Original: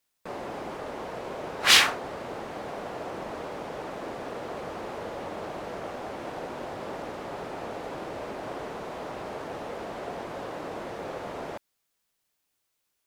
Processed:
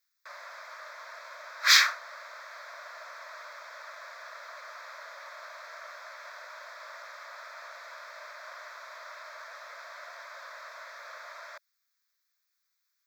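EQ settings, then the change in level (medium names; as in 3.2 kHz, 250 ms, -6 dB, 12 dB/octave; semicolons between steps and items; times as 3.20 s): steep high-pass 610 Hz 72 dB/octave; static phaser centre 2.9 kHz, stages 6; +1.5 dB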